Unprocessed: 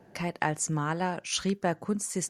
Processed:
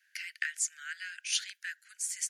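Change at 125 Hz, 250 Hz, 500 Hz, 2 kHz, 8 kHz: below −40 dB, below −40 dB, below −40 dB, −0.5 dB, 0.0 dB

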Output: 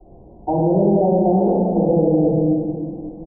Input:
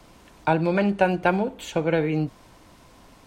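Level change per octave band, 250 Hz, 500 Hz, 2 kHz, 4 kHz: +9.0 dB, +7.5 dB, below −40 dB, below −40 dB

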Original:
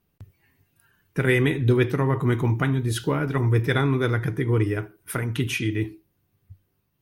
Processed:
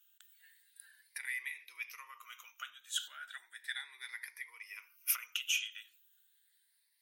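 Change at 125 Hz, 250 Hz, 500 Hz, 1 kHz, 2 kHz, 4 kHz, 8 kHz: below −40 dB, below −40 dB, below −40 dB, −21.5 dB, −12.0 dB, −4.0 dB, −1.0 dB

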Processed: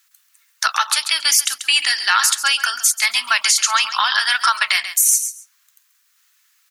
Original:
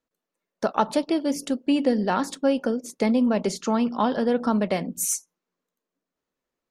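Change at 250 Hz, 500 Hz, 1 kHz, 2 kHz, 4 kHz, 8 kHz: below −35 dB, −20.0 dB, +7.0 dB, +19.5 dB, +21.5 dB, +16.0 dB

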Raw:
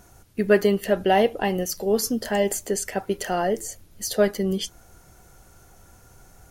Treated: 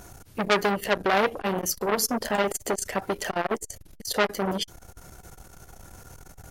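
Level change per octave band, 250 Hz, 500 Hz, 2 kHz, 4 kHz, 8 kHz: −5.0, −5.0, +2.0, +1.0, −1.0 decibels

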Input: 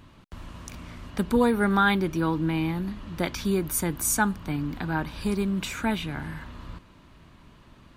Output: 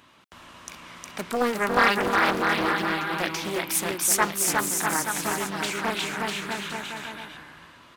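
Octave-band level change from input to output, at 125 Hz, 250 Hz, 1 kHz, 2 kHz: −8.5, −5.5, +4.5, +6.0 decibels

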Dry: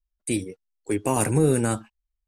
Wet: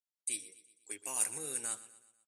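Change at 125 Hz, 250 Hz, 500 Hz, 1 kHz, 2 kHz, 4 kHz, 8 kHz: −36.5, −30.5, −26.0, −20.0, −13.5, −8.0, −3.0 decibels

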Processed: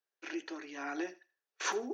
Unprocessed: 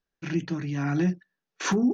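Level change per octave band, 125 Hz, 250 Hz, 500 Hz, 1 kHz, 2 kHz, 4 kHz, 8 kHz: below −40 dB, −16.5 dB, −7.0 dB, −5.0 dB, −5.0 dB, −5.0 dB, can't be measured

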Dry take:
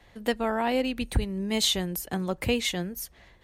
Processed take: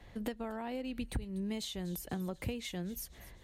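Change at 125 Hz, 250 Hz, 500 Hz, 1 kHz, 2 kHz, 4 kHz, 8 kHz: −8.0, −8.5, −13.0, −14.0, −14.5, −16.5, −13.5 decibels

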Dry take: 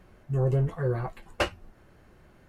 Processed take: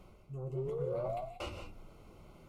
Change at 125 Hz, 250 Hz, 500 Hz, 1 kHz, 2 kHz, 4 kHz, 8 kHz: −15.0 dB, −12.5 dB, −5.5 dB, −7.5 dB, −17.5 dB, −12.0 dB, below −10 dB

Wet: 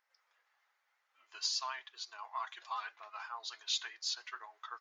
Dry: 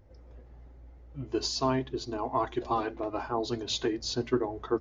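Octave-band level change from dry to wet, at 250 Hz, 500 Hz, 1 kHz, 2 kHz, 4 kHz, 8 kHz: below −40 dB, −29.0 dB, −9.5 dB, −2.5 dB, −2.0 dB, can't be measured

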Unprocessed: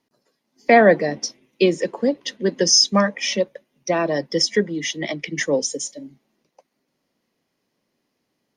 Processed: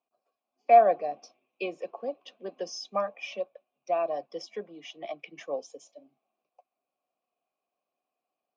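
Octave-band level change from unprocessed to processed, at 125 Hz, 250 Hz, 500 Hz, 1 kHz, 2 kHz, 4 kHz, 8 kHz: below −25 dB, −22.5 dB, −8.5 dB, −2.0 dB, −18.5 dB, −23.0 dB, −27.0 dB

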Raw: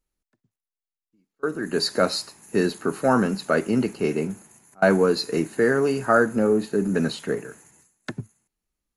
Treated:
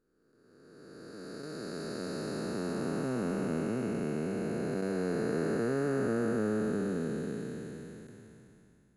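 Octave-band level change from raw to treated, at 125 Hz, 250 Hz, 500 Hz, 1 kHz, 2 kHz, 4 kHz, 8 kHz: −6.5, −8.0, −11.0, −15.5, −14.5, −18.0, −12.0 decibels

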